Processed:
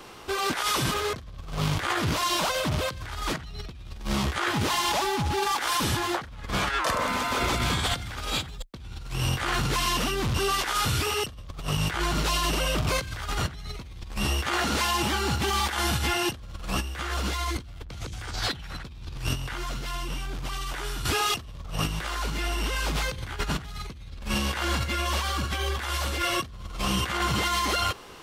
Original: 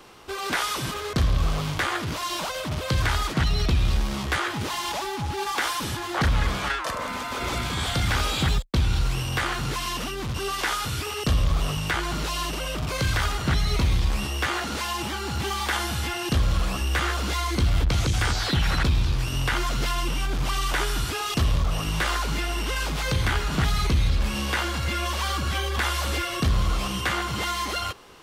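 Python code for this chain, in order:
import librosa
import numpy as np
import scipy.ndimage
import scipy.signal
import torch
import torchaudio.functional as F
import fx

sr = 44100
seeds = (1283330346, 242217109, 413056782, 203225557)

y = fx.over_compress(x, sr, threshold_db=-28.0, ratio=-0.5)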